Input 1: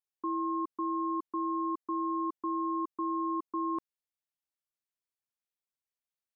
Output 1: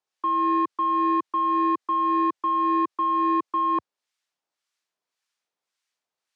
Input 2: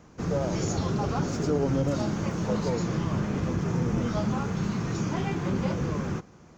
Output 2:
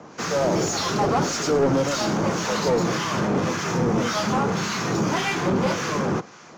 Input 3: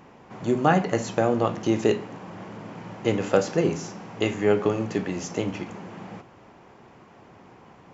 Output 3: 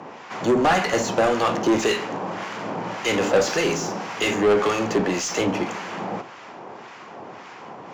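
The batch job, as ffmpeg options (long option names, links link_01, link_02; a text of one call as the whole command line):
ffmpeg -i in.wav -filter_complex "[0:a]highpass=frequency=82:width=0.5412,highpass=frequency=82:width=1.3066,bass=frequency=250:gain=0,treble=frequency=4000:gain=12,acrossover=split=1100[link_01][link_02];[link_01]aeval=exprs='val(0)*(1-0.7/2+0.7/2*cos(2*PI*1.8*n/s))':channel_layout=same[link_03];[link_02]aeval=exprs='val(0)*(1-0.7/2-0.7/2*cos(2*PI*1.8*n/s))':channel_layout=same[link_04];[link_03][link_04]amix=inputs=2:normalize=0,asplit=2[link_05][link_06];[link_06]highpass=frequency=720:poles=1,volume=25dB,asoftclip=type=tanh:threshold=-10dB[link_07];[link_05][link_07]amix=inputs=2:normalize=0,lowpass=frequency=2300:poles=1,volume=-6dB,acrossover=split=120[link_08][link_09];[link_09]adynamicsmooth=sensitivity=6:basefreq=6300[link_10];[link_08][link_10]amix=inputs=2:normalize=0" out.wav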